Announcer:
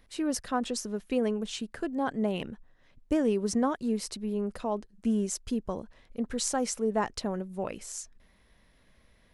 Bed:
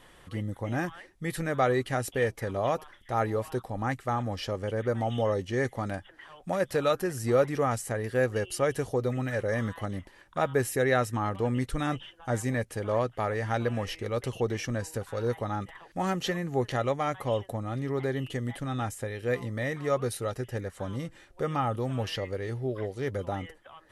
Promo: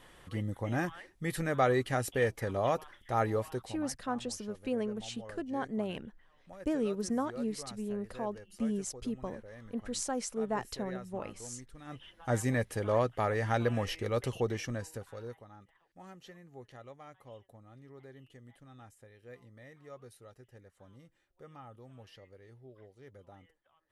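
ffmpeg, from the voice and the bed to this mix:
ffmpeg -i stem1.wav -i stem2.wav -filter_complex "[0:a]adelay=3550,volume=-5.5dB[link_01];[1:a]volume=18dB,afade=type=out:start_time=3.37:duration=0.51:silence=0.112202,afade=type=in:start_time=11.85:duration=0.48:silence=0.1,afade=type=out:start_time=14.15:duration=1.3:silence=0.0891251[link_02];[link_01][link_02]amix=inputs=2:normalize=0" out.wav

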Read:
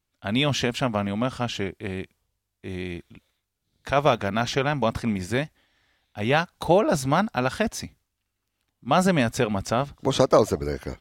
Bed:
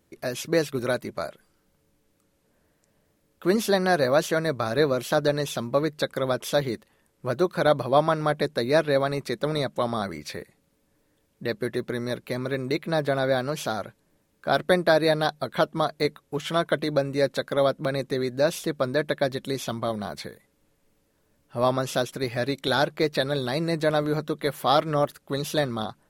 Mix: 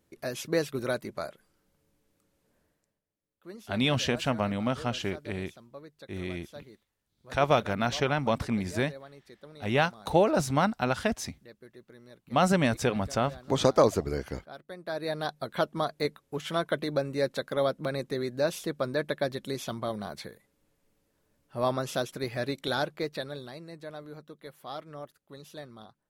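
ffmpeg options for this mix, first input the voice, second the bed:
ffmpeg -i stem1.wav -i stem2.wav -filter_complex "[0:a]adelay=3450,volume=-3.5dB[link_01];[1:a]volume=13.5dB,afade=type=out:start_time=2.58:duration=0.43:silence=0.11885,afade=type=in:start_time=14.76:duration=0.75:silence=0.125893,afade=type=out:start_time=22.56:duration=1.06:silence=0.199526[link_02];[link_01][link_02]amix=inputs=2:normalize=0" out.wav

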